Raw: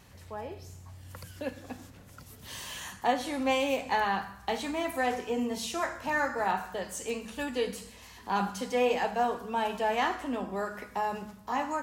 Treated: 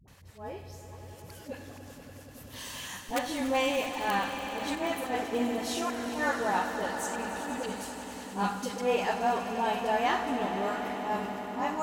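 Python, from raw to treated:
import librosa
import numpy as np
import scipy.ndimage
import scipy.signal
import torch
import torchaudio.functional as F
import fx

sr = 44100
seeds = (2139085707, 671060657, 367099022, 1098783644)

p1 = (np.mod(10.0 ** (16.5 / 20.0) * x + 1.0, 2.0) - 1.0) / 10.0 ** (16.5 / 20.0)
p2 = fx.auto_swell(p1, sr, attack_ms=117.0)
p3 = fx.dispersion(p2, sr, late='highs', ms=79.0, hz=470.0)
p4 = p3 + fx.echo_swell(p3, sr, ms=96, loudest=5, wet_db=-13.5, dry=0)
y = fx.band_widen(p4, sr, depth_pct=70, at=(4.75, 5.33))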